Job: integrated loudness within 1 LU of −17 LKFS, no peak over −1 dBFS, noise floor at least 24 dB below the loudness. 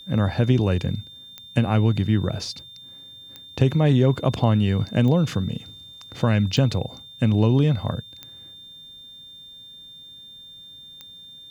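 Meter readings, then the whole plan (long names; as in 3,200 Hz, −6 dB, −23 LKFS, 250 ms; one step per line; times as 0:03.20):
number of clicks 6; interfering tone 3,600 Hz; level of the tone −41 dBFS; integrated loudness −22.0 LKFS; sample peak −4.5 dBFS; target loudness −17.0 LKFS
→ click removal
notch filter 3,600 Hz, Q 30
level +5 dB
brickwall limiter −1 dBFS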